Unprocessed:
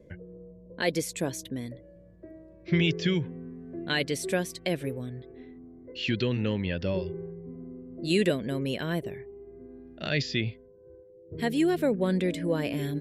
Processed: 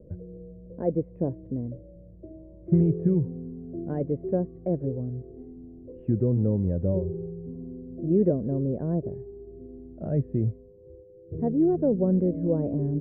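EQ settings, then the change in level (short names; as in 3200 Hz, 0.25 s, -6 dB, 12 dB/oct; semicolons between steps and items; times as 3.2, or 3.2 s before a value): ladder low-pass 790 Hz, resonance 25%; air absorption 400 m; low shelf 160 Hz +10 dB; +6.0 dB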